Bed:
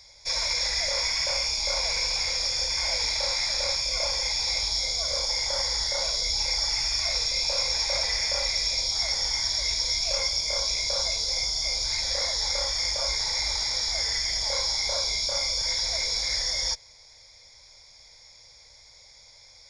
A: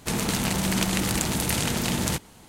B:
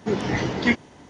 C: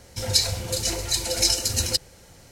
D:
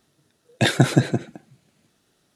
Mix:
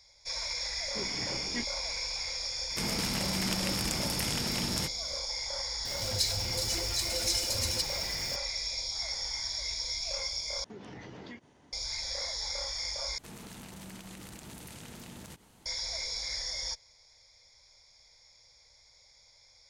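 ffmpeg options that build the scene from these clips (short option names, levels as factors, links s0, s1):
-filter_complex "[2:a]asplit=2[s0][s1];[1:a]asplit=2[s2][s3];[0:a]volume=0.376[s4];[3:a]aeval=exprs='val(0)+0.5*0.0501*sgn(val(0))':c=same[s5];[s1]acompressor=threshold=0.0355:ratio=6:attack=3.2:release=140:knee=1:detection=peak[s6];[s3]acompressor=threshold=0.02:ratio=3:attack=0.35:release=126:knee=1:detection=peak[s7];[s4]asplit=3[s8][s9][s10];[s8]atrim=end=10.644[s11];[s6]atrim=end=1.09,asetpts=PTS-STARTPTS,volume=0.211[s12];[s9]atrim=start=11.726:end=13.184[s13];[s7]atrim=end=2.48,asetpts=PTS-STARTPTS,volume=0.316[s14];[s10]atrim=start=15.656[s15];[s0]atrim=end=1.09,asetpts=PTS-STARTPTS,volume=0.141,afade=t=in:d=0.004:c=hsin,afade=t=out:st=1.086:d=0.004:c=hsin,adelay=890[s16];[s2]atrim=end=2.48,asetpts=PTS-STARTPTS,volume=0.376,afade=t=in:d=0.004:c=hsin,afade=t=out:st=2.476:d=0.004:c=hsin,adelay=2700[s17];[s5]atrim=end=2.51,asetpts=PTS-STARTPTS,volume=0.266,afade=t=in:d=0.004:c=hsin,afade=t=out:st=2.506:d=0.004:c=hsin,adelay=257985S[s18];[s11][s12]acrossfade=d=0.004:c1=hsin:c2=hsin[s19];[s19][s13]acrossfade=d=0.004:c1=hsin:c2=hsin[s20];[s20][s14]acrossfade=d=0.004:c1=hsin:c2=hsin[s21];[s21][s15]acrossfade=d=0.004:c1=hsin:c2=hsin[s22];[s22][s16][s17][s18]amix=inputs=4:normalize=0"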